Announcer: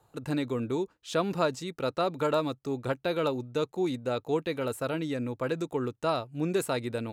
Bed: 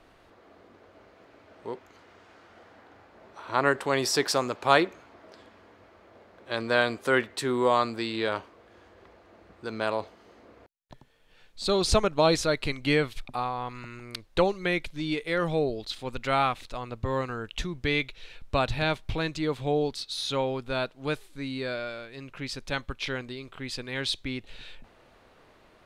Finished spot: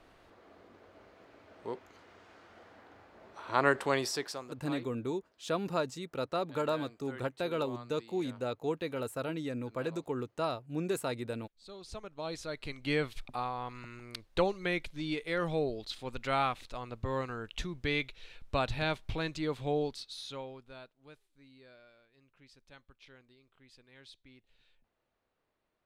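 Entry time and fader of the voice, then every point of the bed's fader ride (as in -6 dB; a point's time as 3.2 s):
4.35 s, -5.0 dB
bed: 3.9 s -3 dB
4.68 s -24 dB
11.83 s -24 dB
13.06 s -5.5 dB
19.81 s -5.5 dB
21.07 s -25 dB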